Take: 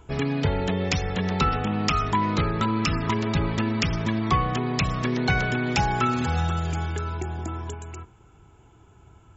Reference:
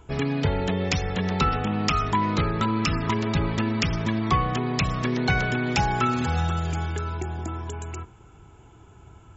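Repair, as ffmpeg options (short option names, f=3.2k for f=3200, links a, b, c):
-af "asetnsamples=n=441:p=0,asendcmd='7.74 volume volume 3.5dB',volume=0dB"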